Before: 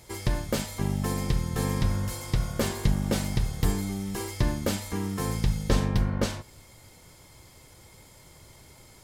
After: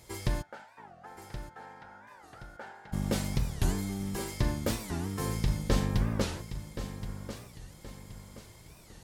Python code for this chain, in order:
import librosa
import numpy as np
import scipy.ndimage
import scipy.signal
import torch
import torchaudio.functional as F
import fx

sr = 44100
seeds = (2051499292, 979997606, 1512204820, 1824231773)

y = fx.double_bandpass(x, sr, hz=1100.0, octaves=0.73, at=(0.41, 2.92), fade=0.02)
y = fx.echo_feedback(y, sr, ms=1074, feedback_pct=37, wet_db=-11.0)
y = fx.record_warp(y, sr, rpm=45.0, depth_cents=250.0)
y = y * librosa.db_to_amplitude(-3.5)